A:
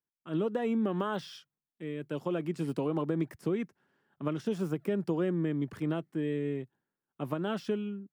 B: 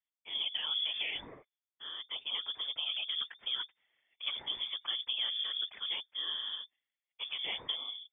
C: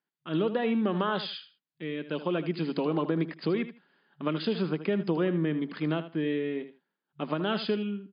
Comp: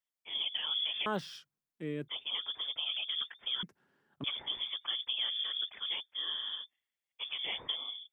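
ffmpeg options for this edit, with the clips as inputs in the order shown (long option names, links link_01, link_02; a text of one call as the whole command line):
ffmpeg -i take0.wav -i take1.wav -filter_complex "[0:a]asplit=2[link_01][link_02];[1:a]asplit=3[link_03][link_04][link_05];[link_03]atrim=end=1.062[link_06];[link_01]atrim=start=1.058:end=2.082[link_07];[link_04]atrim=start=2.078:end=3.632[link_08];[link_02]atrim=start=3.628:end=4.242[link_09];[link_05]atrim=start=4.238[link_10];[link_06][link_07]acrossfade=duration=0.004:curve1=hsin:curve2=hsin[link_11];[link_11][link_08]acrossfade=duration=0.004:curve1=hsin:curve2=hsin[link_12];[link_12][link_09]acrossfade=duration=0.004:curve1=hsin:curve2=hsin[link_13];[link_13][link_10]acrossfade=duration=0.004:curve1=hsin:curve2=hsin" out.wav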